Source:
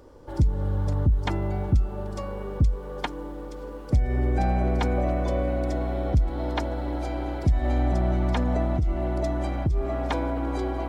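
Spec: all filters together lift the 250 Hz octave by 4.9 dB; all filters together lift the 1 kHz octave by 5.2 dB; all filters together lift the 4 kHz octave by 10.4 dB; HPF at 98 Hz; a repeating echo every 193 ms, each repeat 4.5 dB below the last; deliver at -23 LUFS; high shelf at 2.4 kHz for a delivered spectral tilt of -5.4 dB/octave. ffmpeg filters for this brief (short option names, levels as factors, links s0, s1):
-af "highpass=98,equalizer=f=250:t=o:g=6,equalizer=f=1000:t=o:g=5.5,highshelf=f=2400:g=6,equalizer=f=4000:t=o:g=7.5,aecho=1:1:193|386|579|772|965|1158|1351|1544|1737:0.596|0.357|0.214|0.129|0.0772|0.0463|0.0278|0.0167|0.01,volume=1.12"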